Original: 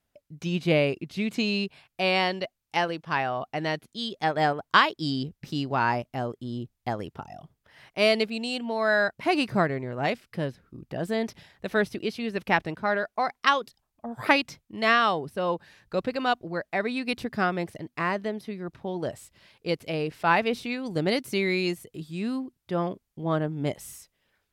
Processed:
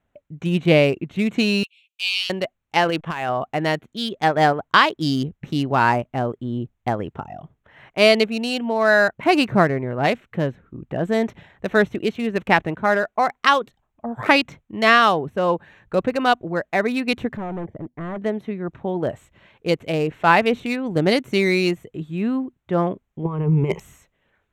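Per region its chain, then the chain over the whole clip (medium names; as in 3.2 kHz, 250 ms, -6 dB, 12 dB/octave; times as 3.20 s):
1.63–2.30 s: steep high-pass 2.5 kHz 72 dB/octave + comb 7 ms, depth 41%
2.85–3.29 s: peaking EQ 3.1 kHz +5.5 dB 1.1 oct + compressor with a negative ratio -31 dBFS + hysteresis with a dead band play -49.5 dBFS
17.37–18.22 s: boxcar filter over 33 samples + hard clipper -33.5 dBFS
23.25–23.80 s: rippled EQ curve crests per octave 0.77, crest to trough 17 dB + compressor with a negative ratio -26 dBFS, ratio -0.5
whole clip: local Wiener filter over 9 samples; loudness maximiser +8.5 dB; trim -1 dB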